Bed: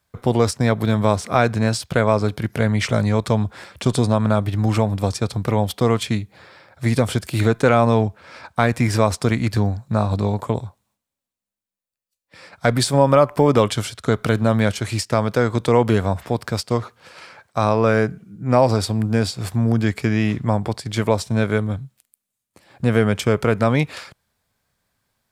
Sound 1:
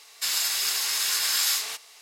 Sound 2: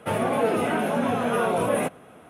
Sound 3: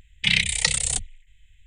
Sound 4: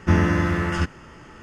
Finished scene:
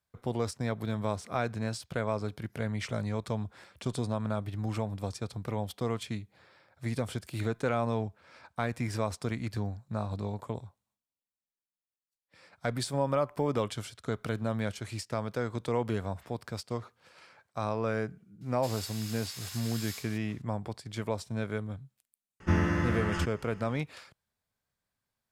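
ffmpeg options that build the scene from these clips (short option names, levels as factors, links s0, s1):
-filter_complex "[0:a]volume=0.188[s0];[1:a]asoftclip=type=tanh:threshold=0.188,atrim=end=2.01,asetpts=PTS-STARTPTS,volume=0.133,afade=t=in:d=0.004:c=hsin,afade=t=out:st=2.006:d=0.004:c=hsin,adelay=18410[s1];[4:a]atrim=end=1.42,asetpts=PTS-STARTPTS,volume=0.398,afade=t=in:d=0.004:c=hsin,afade=t=out:st=1.416:d=0.004:c=hsin,adelay=22400[s2];[s0][s1][s2]amix=inputs=3:normalize=0"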